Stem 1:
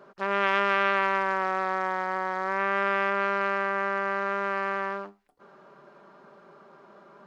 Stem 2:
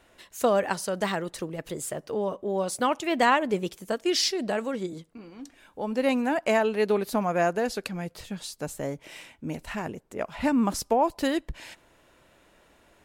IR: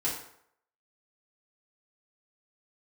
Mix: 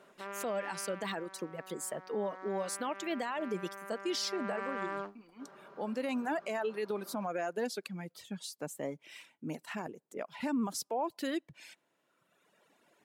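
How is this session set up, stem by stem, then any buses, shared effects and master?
0.65 s -9.5 dB -> 1.29 s -21 dB -> 2.17 s -21 dB -> 2.46 s -14 dB -> 4.09 s -14 dB -> 4.76 s -2.5 dB, 0.00 s, no send, limiter -21 dBFS, peak gain reduction 10.5 dB
-5.0 dB, 0.00 s, no send, HPF 150 Hz 24 dB/oct; reverb removal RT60 1.7 s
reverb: off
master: limiter -26 dBFS, peak gain reduction 12 dB

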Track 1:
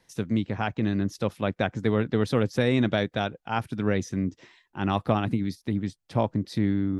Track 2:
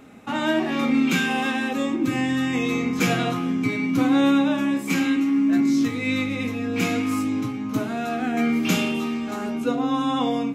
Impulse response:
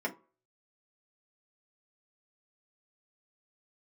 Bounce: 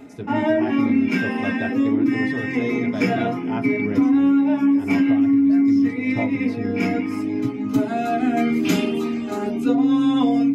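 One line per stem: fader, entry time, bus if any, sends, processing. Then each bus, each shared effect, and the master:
-7.0 dB, 0.00 s, send -5 dB, vocal rider 0.5 s
+2.5 dB, 0.00 s, send -5.5 dB, reverb removal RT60 0.53 s; auto duck -11 dB, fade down 0.25 s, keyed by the first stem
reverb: on, RT60 0.40 s, pre-delay 3 ms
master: compressor, threshold -14 dBFS, peak gain reduction 7.5 dB

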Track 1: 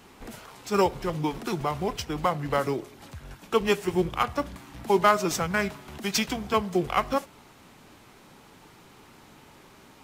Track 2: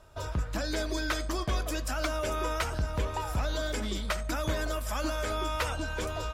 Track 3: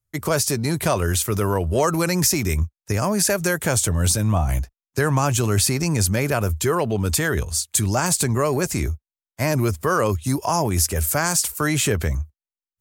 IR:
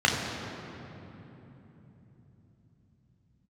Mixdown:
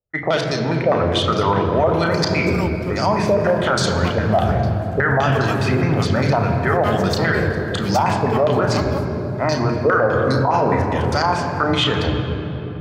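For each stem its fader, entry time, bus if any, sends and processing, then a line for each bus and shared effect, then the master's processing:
-4.5 dB, 1.80 s, no send, dry
-19.5 dB, 0.35 s, no send, limiter -30 dBFS, peak gain reduction 10 dB
0.0 dB, 0.00 s, send -15.5 dB, low shelf 150 Hz -9 dB; stepped low-pass 9.8 Hz 510–4500 Hz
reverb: on, RT60 3.5 s, pre-delay 10 ms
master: limiter -7.5 dBFS, peak gain reduction 9.5 dB

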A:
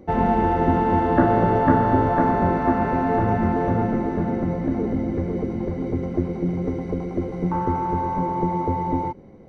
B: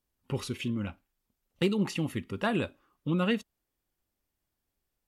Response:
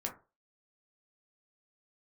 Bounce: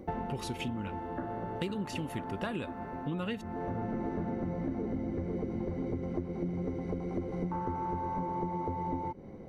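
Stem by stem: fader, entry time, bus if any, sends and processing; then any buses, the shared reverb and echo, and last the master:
-0.5 dB, 0.00 s, no send, auto duck -18 dB, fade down 0.35 s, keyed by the second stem
+0.5 dB, 0.00 s, no send, dry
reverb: off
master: compressor 6:1, threshold -32 dBFS, peak gain reduction 14.5 dB

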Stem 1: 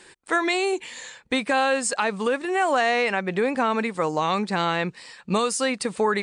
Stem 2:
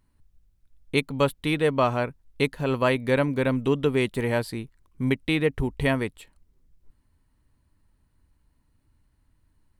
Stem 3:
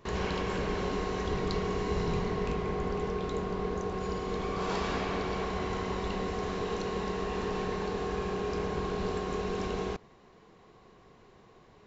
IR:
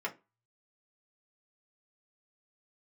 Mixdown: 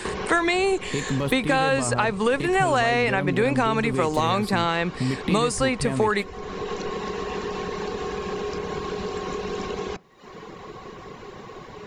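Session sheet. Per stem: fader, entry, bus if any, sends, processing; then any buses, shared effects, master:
+1.0 dB, 0.00 s, no send, dry
-3.0 dB, 0.00 s, no send, low shelf 210 Hz +11 dB; limiter -17 dBFS, peak gain reduction 13.5 dB
-2.5 dB, 0.00 s, send -16.5 dB, reverb removal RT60 0.63 s; notch 680 Hz, Q 13; compressor, threshold -35 dBFS, peak gain reduction 8 dB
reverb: on, RT60 0.25 s, pre-delay 3 ms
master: three-band squash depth 70%

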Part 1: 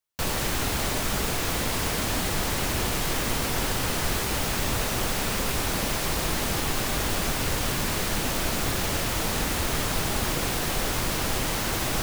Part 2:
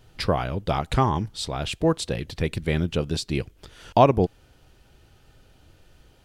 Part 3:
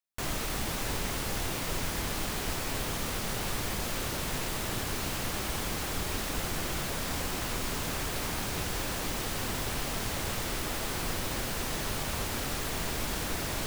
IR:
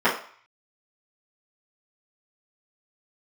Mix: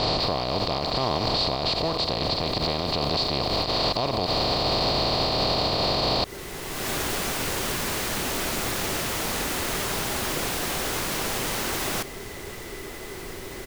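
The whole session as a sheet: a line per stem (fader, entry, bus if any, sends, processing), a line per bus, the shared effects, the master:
0.0 dB, 0.00 s, no bus, no send, low shelf 130 Hz -10.5 dB; auto duck -23 dB, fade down 0.30 s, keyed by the second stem
+2.5 dB, 0.00 s, bus A, no send, per-bin compression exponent 0.2; synth low-pass 4400 Hz, resonance Q 7.5
-6.0 dB, 2.20 s, bus A, no send, small resonant body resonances 390/2000 Hz, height 13 dB
bus A: 0.0 dB, compressor 6:1, threshold -17 dBFS, peak gain reduction 13 dB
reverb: off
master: limiter -14.5 dBFS, peak gain reduction 11.5 dB

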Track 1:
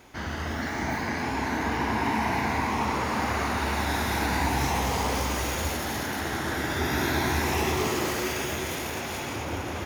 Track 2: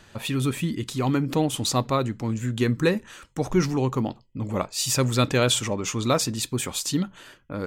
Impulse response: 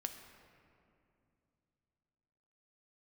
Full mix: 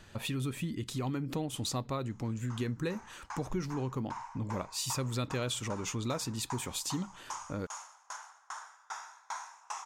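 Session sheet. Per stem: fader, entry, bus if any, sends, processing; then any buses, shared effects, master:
-2.5 dB, 2.10 s, send -5 dB, elliptic band-pass 980–7800 Hz, stop band 50 dB; band shelf 2800 Hz -14.5 dB; dB-ramp tremolo decaying 2.5 Hz, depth 35 dB
-4.5 dB, 0.00 s, no send, low shelf 120 Hz +5 dB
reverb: on, RT60 2.6 s, pre-delay 4 ms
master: compressor 3:1, threshold -34 dBFS, peak gain reduction 12 dB

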